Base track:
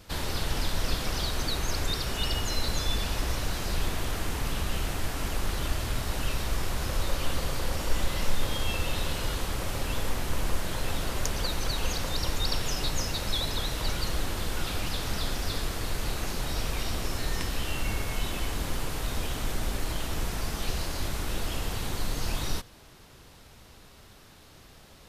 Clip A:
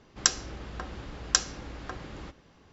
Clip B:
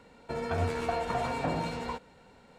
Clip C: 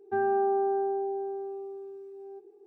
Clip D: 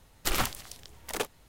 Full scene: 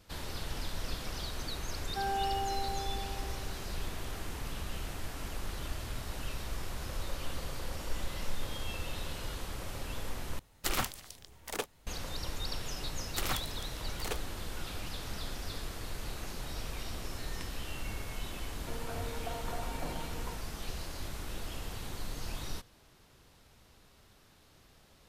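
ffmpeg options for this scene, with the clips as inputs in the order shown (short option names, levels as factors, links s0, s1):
-filter_complex "[4:a]asplit=2[s0][s1];[0:a]volume=0.355[s2];[3:a]aecho=1:1:3.7:0.69[s3];[s2]asplit=2[s4][s5];[s4]atrim=end=10.394[s6];[s0]atrim=end=1.48,asetpts=PTS-STARTPTS,volume=0.631[s7];[s5]atrim=start=11.866[s8];[s3]atrim=end=2.66,asetpts=PTS-STARTPTS,volume=0.398,afade=t=in:d=0.004:c=hsin,afade=t=out:st=2.656:d=0.004:c=hsin,adelay=1840[s9];[s1]atrim=end=1.48,asetpts=PTS-STARTPTS,volume=0.473,afade=t=in:d=0.004:c=hsin,afade=t=out:st=1.476:d=0.004:c=hsin,adelay=12910[s10];[2:a]atrim=end=2.58,asetpts=PTS-STARTPTS,volume=0.299,afade=t=in:d=0.004:c=hsin,afade=t=out:st=2.576:d=0.004:c=hsin,adelay=18380[s11];[s6][s7]acrossfade=d=0.004:c1=hsin:c2=hsin[s12];[s12][s8]acrossfade=d=0.004:c1=hsin:c2=hsin[s13];[s13][s9][s10][s11]amix=inputs=4:normalize=0"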